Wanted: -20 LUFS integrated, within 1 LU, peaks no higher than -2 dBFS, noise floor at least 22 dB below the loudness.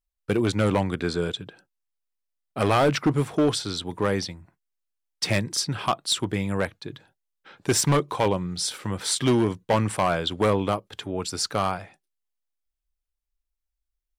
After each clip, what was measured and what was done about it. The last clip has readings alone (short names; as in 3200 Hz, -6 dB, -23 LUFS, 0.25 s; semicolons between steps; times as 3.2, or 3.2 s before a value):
clipped 1.4%; flat tops at -15.0 dBFS; loudness -25.0 LUFS; peak -15.0 dBFS; loudness target -20.0 LUFS
-> clip repair -15 dBFS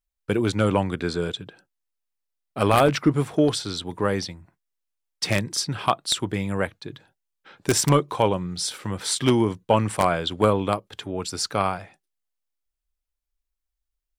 clipped 0.0%; loudness -23.5 LUFS; peak -6.0 dBFS; loudness target -20.0 LUFS
-> gain +3.5 dB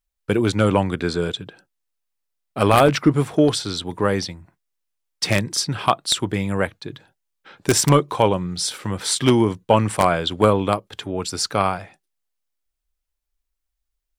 loudness -20.0 LUFS; peak -2.5 dBFS; noise floor -79 dBFS